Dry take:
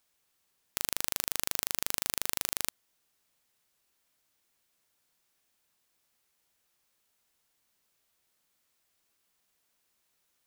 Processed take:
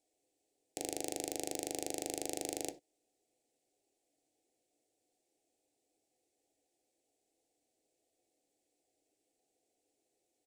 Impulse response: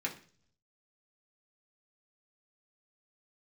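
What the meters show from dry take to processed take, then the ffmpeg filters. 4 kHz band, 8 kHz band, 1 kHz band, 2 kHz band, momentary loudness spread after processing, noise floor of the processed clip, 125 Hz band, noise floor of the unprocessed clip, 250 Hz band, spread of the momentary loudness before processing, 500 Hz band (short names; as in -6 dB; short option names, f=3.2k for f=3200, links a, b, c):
-9.5 dB, -6.0 dB, -2.0 dB, -12.0 dB, 5 LU, -84 dBFS, -6.0 dB, -76 dBFS, +7.0 dB, 4 LU, +7.0 dB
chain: -filter_complex "[0:a]firequalizer=gain_entry='entry(120,0);entry(190,-6);entry(290,10);entry(740,9);entry(1100,-28);entry(2000,-11);entry(7900,-2);entry(15000,-20)':delay=0.05:min_phase=1,asplit=2[a][b];[1:a]atrim=start_sample=2205,afade=t=out:st=0.15:d=0.01,atrim=end_sample=7056[c];[b][c]afir=irnorm=-1:irlink=0,volume=-3.5dB[d];[a][d]amix=inputs=2:normalize=0,volume=-5.5dB"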